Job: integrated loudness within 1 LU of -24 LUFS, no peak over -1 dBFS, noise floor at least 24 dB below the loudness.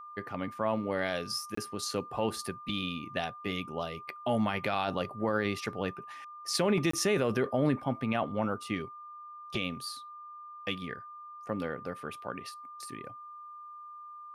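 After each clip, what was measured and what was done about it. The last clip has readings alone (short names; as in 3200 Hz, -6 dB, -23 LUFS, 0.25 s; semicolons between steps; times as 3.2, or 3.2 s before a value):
dropouts 2; longest dropout 24 ms; steady tone 1200 Hz; tone level -44 dBFS; loudness -33.5 LUFS; peak -17.5 dBFS; loudness target -24.0 LUFS
-> interpolate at 1.55/6.91, 24 ms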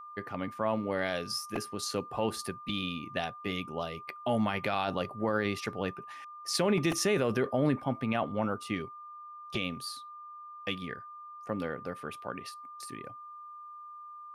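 dropouts 0; steady tone 1200 Hz; tone level -44 dBFS
-> notch 1200 Hz, Q 30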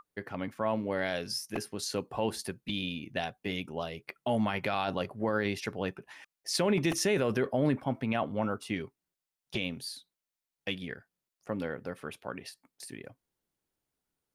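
steady tone none; loudness -33.0 LUFS; peak -18.0 dBFS; loudness target -24.0 LUFS
-> gain +9 dB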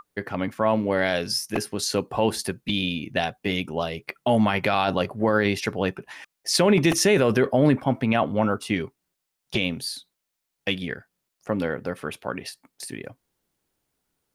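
loudness -24.0 LUFS; peak -9.0 dBFS; noise floor -81 dBFS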